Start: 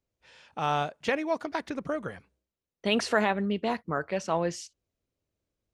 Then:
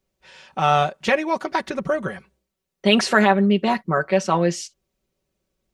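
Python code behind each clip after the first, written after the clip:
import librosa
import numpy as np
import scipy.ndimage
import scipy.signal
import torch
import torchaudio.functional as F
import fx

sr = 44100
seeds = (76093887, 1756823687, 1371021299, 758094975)

y = x + 0.69 * np.pad(x, (int(5.3 * sr / 1000.0), 0))[:len(x)]
y = y * 10.0 ** (7.5 / 20.0)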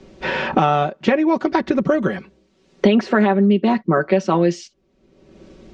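y = scipy.signal.sosfilt(scipy.signal.bessel(6, 4500.0, 'lowpass', norm='mag', fs=sr, output='sos'), x)
y = fx.peak_eq(y, sr, hz=290.0, db=11.0, octaves=1.3)
y = fx.band_squash(y, sr, depth_pct=100)
y = y * 10.0 ** (-2.0 / 20.0)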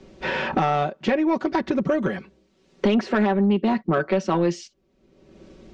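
y = 10.0 ** (-9.0 / 20.0) * np.tanh(x / 10.0 ** (-9.0 / 20.0))
y = y * 10.0 ** (-3.0 / 20.0)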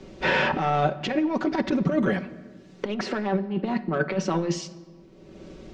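y = fx.over_compress(x, sr, threshold_db=-23.0, ratio=-0.5)
y = fx.room_shoebox(y, sr, seeds[0], volume_m3=1700.0, walls='mixed', distance_m=0.41)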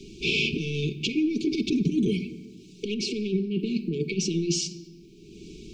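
y = fx.high_shelf(x, sr, hz=3000.0, db=9.0)
y = fx.transient(y, sr, attack_db=-1, sustain_db=3)
y = fx.brickwall_bandstop(y, sr, low_hz=470.0, high_hz=2200.0)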